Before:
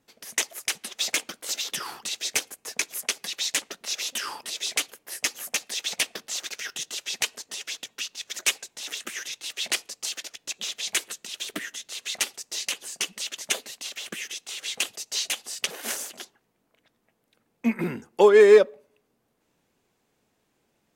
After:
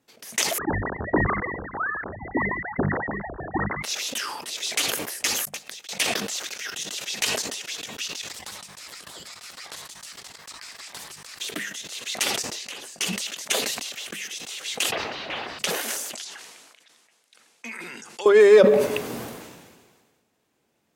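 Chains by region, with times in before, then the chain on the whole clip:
0.58–3.83 s: formants replaced by sine waves + frequency inversion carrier 2.6 kHz + peaking EQ 360 Hz +3.5 dB 0.71 oct
5.45–5.89 s: compression 2.5:1, threshold -35 dBFS + waveshaping leveller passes 1 + inverted gate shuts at -31 dBFS, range -41 dB
8.29–11.41 s: compression 4:1, threshold -35 dBFS + ring modulator 1.4 kHz
12.25–12.99 s: treble shelf 4.4 kHz -7.5 dB + compression 1.5:1, threshold -43 dBFS
14.92–15.59 s: jump at every zero crossing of -32.5 dBFS + overdrive pedal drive 19 dB, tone 1.8 kHz, clips at -13 dBFS + distance through air 350 m
16.15–18.26 s: frequency weighting ITU-R 468 + compression 3:1, threshold -35 dBFS
whole clip: high-pass 62 Hz; hum notches 50/100/150/200 Hz; decay stretcher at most 36 dB/s

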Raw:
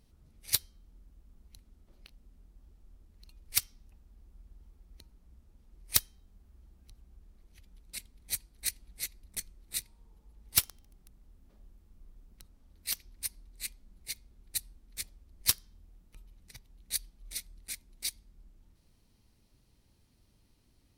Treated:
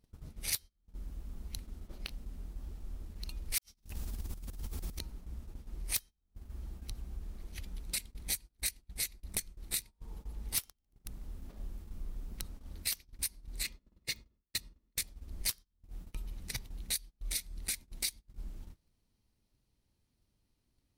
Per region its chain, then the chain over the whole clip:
3.58–4.99 s: treble shelf 3.3 kHz +11.5 dB + compressor with a negative ratio -57 dBFS, ratio -0.5
13.63–14.98 s: gate with hold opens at -47 dBFS, closes at -59 dBFS + peaking EQ 11 kHz -14 dB 1.1 oct + comb of notches 770 Hz
whole clip: compression 10:1, threshold -47 dBFS; gate -59 dBFS, range -24 dB; trim +14 dB

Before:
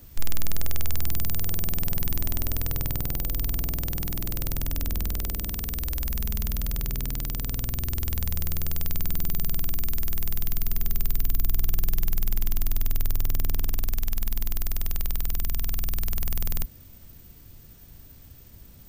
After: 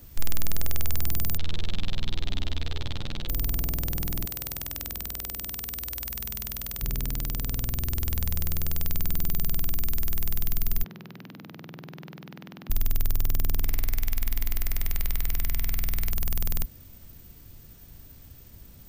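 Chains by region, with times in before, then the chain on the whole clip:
1.37–3.29 s: resonant low-pass 3.6 kHz, resonance Q 4 + three-phase chorus
4.25–6.82 s: high-pass 48 Hz + bass shelf 470 Hz -10 dB
10.84–12.70 s: steep high-pass 150 Hz + distance through air 300 m
13.61–16.11 s: peaking EQ 2.1 kHz +8.5 dB 0.4 oct + de-hum 184.6 Hz, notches 31
whole clip: none

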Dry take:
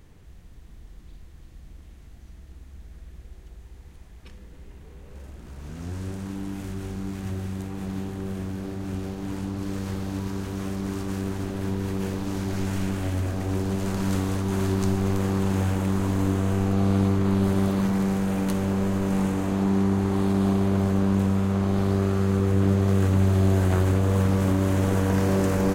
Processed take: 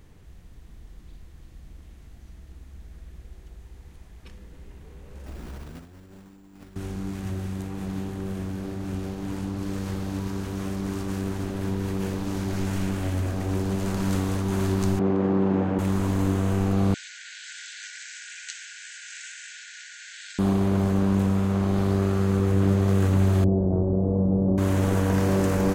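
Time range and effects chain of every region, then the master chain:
5.26–6.76 s: peaking EQ 110 Hz -6.5 dB 0.84 oct + compressor with a negative ratio -41 dBFS, ratio -0.5 + careless resampling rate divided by 6×, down none, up hold
14.99–15.79 s: band-pass 220–3100 Hz + tilt shelf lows +7.5 dB, about 1.1 kHz
16.94–20.39 s: brick-wall FIR band-pass 1.4–8.2 kHz + treble shelf 5 kHz +9 dB
23.44–24.58 s: inverse Chebyshev low-pass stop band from 3.9 kHz, stop band 80 dB + doubling 37 ms -6.5 dB
whole clip: none

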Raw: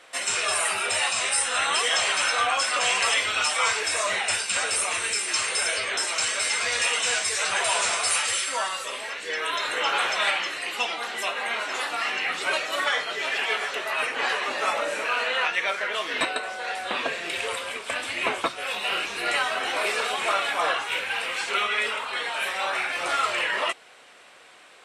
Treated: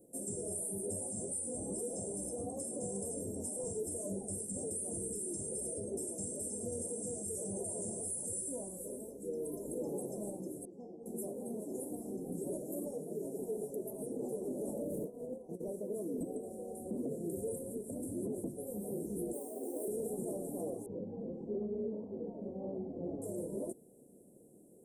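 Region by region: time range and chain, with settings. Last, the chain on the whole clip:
10.65–11.06 s: low-pass 5.1 kHz 24 dB/octave + feedback comb 91 Hz, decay 0.35 s, mix 80%
14.83–15.64 s: treble shelf 2.5 kHz -4.5 dB + compressor with a negative ratio -30 dBFS, ratio -0.5 + loudspeaker Doppler distortion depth 0.31 ms
19.33–19.88 s: steep high-pass 250 Hz 48 dB/octave + bass shelf 350 Hz -4.5 dB + short-mantissa float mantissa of 4-bit
20.86–23.22 s: low-pass 2.7 kHz 24 dB/octave + peaking EQ 210 Hz +5.5 dB 0.35 oct
whole clip: inverse Chebyshev band-stop 1.3–4 kHz, stop band 70 dB; peaking EQ 190 Hz +9 dB 0.91 oct; peak limiter -33 dBFS; trim +3 dB

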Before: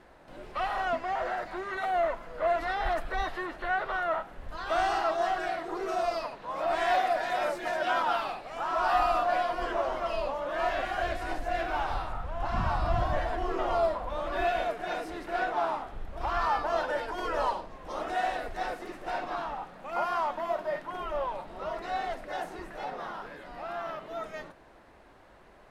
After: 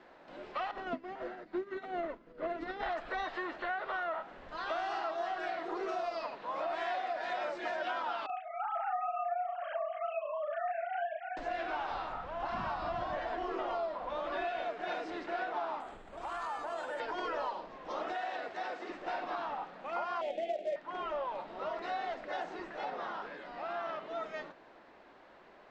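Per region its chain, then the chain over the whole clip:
0.71–2.83 s: resonant low shelf 490 Hz +11 dB, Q 1.5 + upward expansion 2.5:1, over -35 dBFS
8.26–11.37 s: formants replaced by sine waves + doubling 36 ms -2 dB
15.80–17.00 s: compression 2.5:1, threshold -37 dBFS + careless resampling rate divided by 4×, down filtered, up zero stuff
18.12–18.90 s: high-pass 79 Hz + bass shelf 140 Hz -11 dB + compression 2:1, threshold -34 dBFS
20.21–20.76 s: FFT filter 140 Hz 0 dB, 290 Hz +3 dB, 510 Hz +11 dB, 850 Hz +3 dB, 1.3 kHz -27 dB, 2.1 kHz +6 dB, 3.5 kHz +6 dB, 5.8 kHz -10 dB, 11 kHz -27 dB + companded quantiser 6-bit + Butterworth band-stop 1 kHz, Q 1.7
whole clip: elliptic low-pass 7.9 kHz; three-band isolator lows -16 dB, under 180 Hz, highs -22 dB, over 6.1 kHz; compression, threshold -33 dBFS

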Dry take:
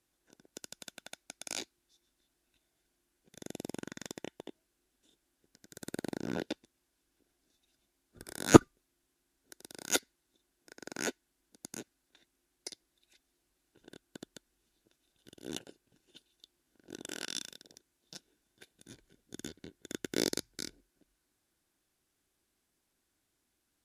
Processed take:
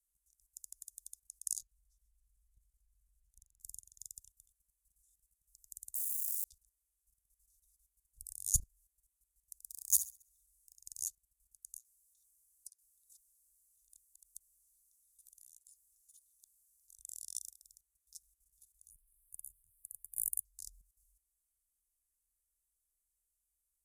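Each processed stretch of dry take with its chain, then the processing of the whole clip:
1.61–3.61 s: tilt EQ -2.5 dB/octave + compression 2.5:1, threshold -56 dBFS
5.95–6.44 s: zero-crossing glitches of -28.5 dBFS + high-pass 300 Hz 24 dB/octave
9.63–10.76 s: treble shelf 4.8 kHz +4.5 dB + flutter echo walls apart 11.4 m, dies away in 0.4 s + decimation joined by straight lines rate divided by 2×
11.76–16.99 s: tilt shelf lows -8.5 dB, about 1.2 kHz + compression 5:1, threshold -52 dBFS
18.90–20.45 s: inverse Chebyshev band-stop 1–5.5 kHz + treble shelf 8.1 kHz +6 dB + static phaser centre 340 Hz, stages 8
whole clip: inverse Chebyshev band-stop 270–1700 Hz, stop band 80 dB; level held to a coarse grid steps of 12 dB; trim +11 dB

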